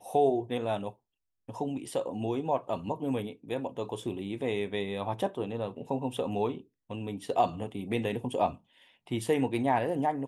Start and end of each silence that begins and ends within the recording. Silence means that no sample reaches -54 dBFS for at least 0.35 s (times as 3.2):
0.95–1.49